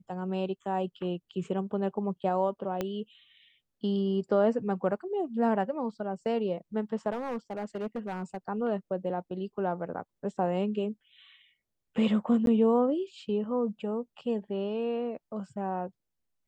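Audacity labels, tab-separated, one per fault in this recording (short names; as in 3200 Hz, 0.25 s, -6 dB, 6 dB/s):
2.810000	2.810000	pop -17 dBFS
7.120000	8.370000	clipped -29.5 dBFS
12.460000	12.470000	gap 12 ms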